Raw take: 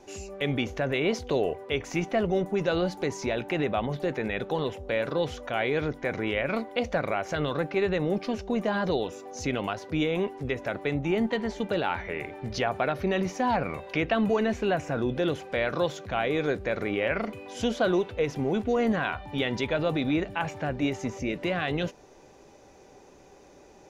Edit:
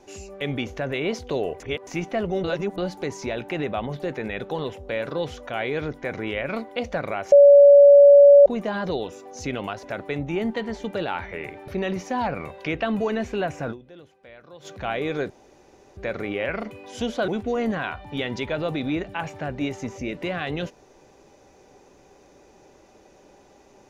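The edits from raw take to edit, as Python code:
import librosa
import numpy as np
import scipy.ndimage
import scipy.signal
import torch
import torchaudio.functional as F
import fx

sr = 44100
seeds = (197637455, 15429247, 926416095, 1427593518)

y = fx.edit(x, sr, fx.reverse_span(start_s=1.6, length_s=0.27),
    fx.reverse_span(start_s=2.44, length_s=0.34),
    fx.bleep(start_s=7.32, length_s=1.14, hz=569.0, db=-7.0),
    fx.cut(start_s=9.83, length_s=0.76),
    fx.cut(start_s=12.44, length_s=0.53),
    fx.fade_down_up(start_s=15.0, length_s=0.95, db=-19.5, fade_s=0.24, curve='exp'),
    fx.insert_room_tone(at_s=16.59, length_s=0.67),
    fx.cut(start_s=17.9, length_s=0.59), tone=tone)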